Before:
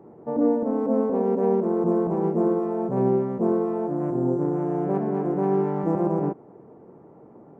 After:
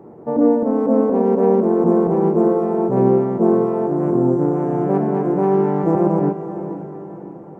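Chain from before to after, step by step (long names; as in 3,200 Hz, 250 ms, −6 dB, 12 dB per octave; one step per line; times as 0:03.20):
feedback delay with all-pass diffusion 567 ms, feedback 43%, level −11.5 dB
level +6.5 dB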